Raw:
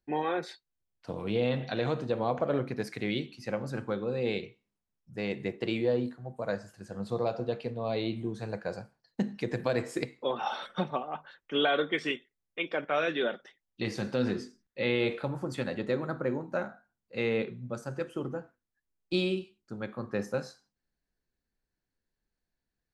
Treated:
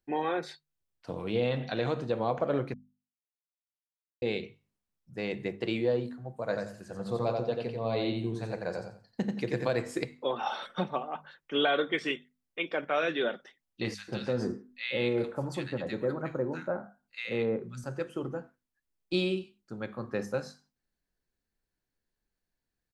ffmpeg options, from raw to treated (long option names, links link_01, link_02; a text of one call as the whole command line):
ffmpeg -i in.wav -filter_complex "[0:a]asplit=3[link_01][link_02][link_03];[link_01]afade=type=out:start_time=6.49:duration=0.02[link_04];[link_02]aecho=1:1:88|176|264:0.596|0.149|0.0372,afade=type=in:start_time=6.49:duration=0.02,afade=type=out:start_time=9.69:duration=0.02[link_05];[link_03]afade=type=in:start_time=9.69:duration=0.02[link_06];[link_04][link_05][link_06]amix=inputs=3:normalize=0,asettb=1/sr,asplit=3[link_07][link_08][link_09];[link_07]atrim=end=13.944[link_10];[link_08]atrim=start=13.94:end=17.84,asetpts=PTS-STARTPTS,afade=type=in:duration=0.004:curve=qsin,afade=type=out:start_time=3.896:duration=0.004:curve=qsin,acrossover=split=1500[link_11][link_12];[link_11]adelay=140[link_13];[link_13][link_12]amix=inputs=2:normalize=0,atrim=end_sample=171990[link_14];[link_09]atrim=start=17.836[link_15];[link_10][link_14]acrossfade=duration=0.004:curve1=hsin:curve2=qsin[link_16];[link_16][link_15]acrossfade=duration=0.004:curve1=qsin:curve2=hsin,asplit=3[link_17][link_18][link_19];[link_17]atrim=end=2.74,asetpts=PTS-STARTPTS,afade=type=out:start_time=2.736:duration=0.004:curve=hsin[link_20];[link_18]atrim=start=2.74:end=4.22,asetpts=PTS-STARTPTS,volume=0[link_21];[link_19]atrim=start=4.22,asetpts=PTS-STARTPTS,afade=type=in:duration=0.004:curve=hsin[link_22];[link_20][link_21][link_22]concat=n=3:v=0:a=1,bandreject=frequency=50:width_type=h:width=6,bandreject=frequency=100:width_type=h:width=6,bandreject=frequency=150:width_type=h:width=6,bandreject=frequency=200:width_type=h:width=6,bandreject=frequency=250:width_type=h:width=6" out.wav